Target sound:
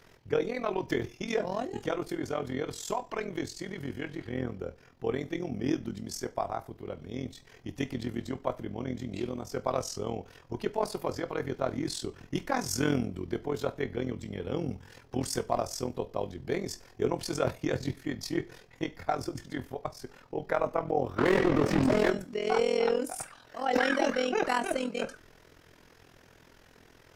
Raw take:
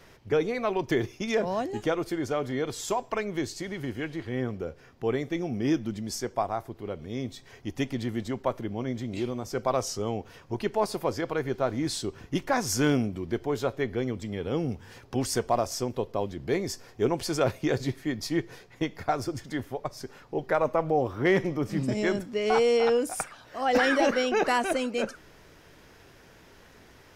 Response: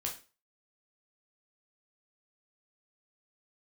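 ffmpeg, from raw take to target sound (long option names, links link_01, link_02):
-filter_complex "[0:a]asplit=3[link_01][link_02][link_03];[link_01]afade=type=out:start_time=21.17:duration=0.02[link_04];[link_02]asplit=2[link_05][link_06];[link_06]highpass=frequency=720:poles=1,volume=36dB,asoftclip=type=tanh:threshold=-13dB[link_07];[link_05][link_07]amix=inputs=2:normalize=0,lowpass=frequency=1100:poles=1,volume=-6dB,afade=type=in:start_time=21.17:duration=0.02,afade=type=out:start_time=22.09:duration=0.02[link_08];[link_03]afade=type=in:start_time=22.09:duration=0.02[link_09];[link_04][link_08][link_09]amix=inputs=3:normalize=0,tremolo=f=42:d=0.857,asplit=2[link_10][link_11];[1:a]atrim=start_sample=2205,asetrate=57330,aresample=44100[link_12];[link_11][link_12]afir=irnorm=-1:irlink=0,volume=-6.5dB[link_13];[link_10][link_13]amix=inputs=2:normalize=0,volume=-2.5dB"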